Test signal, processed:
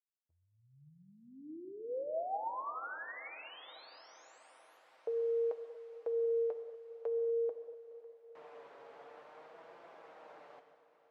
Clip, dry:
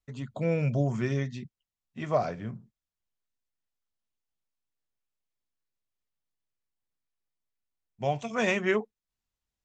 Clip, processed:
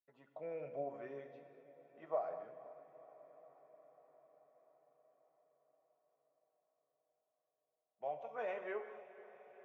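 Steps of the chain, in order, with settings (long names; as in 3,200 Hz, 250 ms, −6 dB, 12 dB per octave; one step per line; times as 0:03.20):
flanger 0.51 Hz, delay 5.8 ms, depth 1.5 ms, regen +42%
four-pole ladder band-pass 770 Hz, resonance 30%
feedback delay with all-pass diffusion 495 ms, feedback 67%, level −16 dB
reverb whose tail is shaped and stops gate 260 ms flat, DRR 8 dB
level +2.5 dB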